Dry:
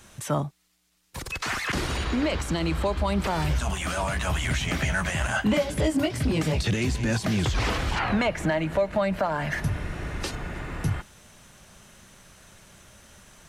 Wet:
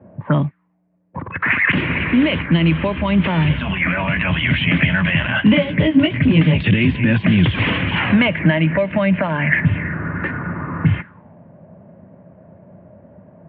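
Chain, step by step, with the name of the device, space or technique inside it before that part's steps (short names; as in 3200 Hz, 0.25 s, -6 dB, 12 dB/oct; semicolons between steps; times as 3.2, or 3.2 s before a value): bell 2700 Hz +3 dB 1.4 oct; envelope filter bass rig (envelope low-pass 600–3200 Hz up, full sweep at -22 dBFS; speaker cabinet 87–2300 Hz, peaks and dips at 97 Hz +5 dB, 170 Hz +9 dB, 260 Hz +6 dB, 420 Hz -4 dB, 760 Hz -9 dB, 1300 Hz -7 dB); gain +7 dB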